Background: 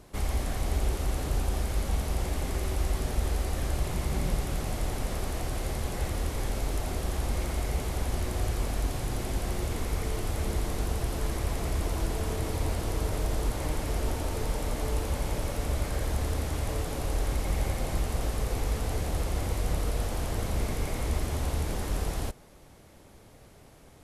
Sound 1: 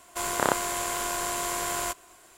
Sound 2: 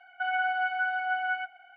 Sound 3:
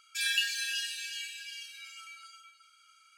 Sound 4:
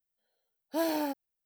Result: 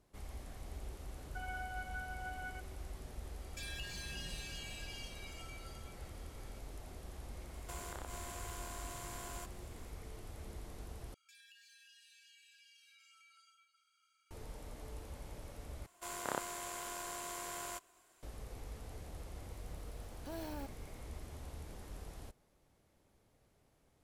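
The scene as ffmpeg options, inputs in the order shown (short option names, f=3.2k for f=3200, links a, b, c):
-filter_complex "[3:a]asplit=2[a][b];[1:a]asplit=2[c][d];[0:a]volume=-18.5dB[e];[a]acompressor=threshold=-38dB:ratio=6:attack=3.2:release=140:knee=1:detection=peak[f];[c]acompressor=threshold=-33dB:ratio=6:attack=3.2:release=140:knee=1:detection=peak[g];[b]acompressor=threshold=-46dB:ratio=6:attack=3.2:release=140:knee=1:detection=peak[h];[4:a]acompressor=threshold=-42dB:ratio=5:attack=0.11:release=23:knee=1:detection=peak[i];[e]asplit=3[j][k][l];[j]atrim=end=11.144[m];[h]atrim=end=3.17,asetpts=PTS-STARTPTS,volume=-14.5dB[n];[k]atrim=start=14.306:end=15.864[o];[d]atrim=end=2.37,asetpts=PTS-STARTPTS,volume=-14dB[p];[l]atrim=start=18.226[q];[2:a]atrim=end=1.76,asetpts=PTS-STARTPTS,volume=-16.5dB,afade=t=in:d=0.004:c=hsin,afade=t=out:st=1.756:d=0.004:c=hsin,adelay=1150[r];[f]atrim=end=3.17,asetpts=PTS-STARTPTS,volume=-6dB,afade=t=in:d=0.004:c=hsin,afade=t=out:st=3.166:d=0.004:c=hsin,adelay=3420[s];[g]atrim=end=2.37,asetpts=PTS-STARTPTS,volume=-11dB,afade=t=in:d=0.004:c=hsin,afade=t=out:st=2.366:d=0.004:c=hsin,adelay=7530[t];[i]atrim=end=1.45,asetpts=PTS-STARTPTS,volume=-0.5dB,afade=t=in:d=0.004:c=hsin,afade=t=out:st=1.446:d=0.004:c=hsin,adelay=19530[u];[m][n]acrossfade=d=0.004:c1=hsin:c2=hsin[v];[v][o]acrossfade=d=0.004:c1=hsin:c2=hsin[w];[w][p]acrossfade=d=0.004:c1=hsin:c2=hsin[x];[x][q]acrossfade=d=0.004:c1=hsin:c2=hsin[y];[y][r][s][t][u]amix=inputs=5:normalize=0"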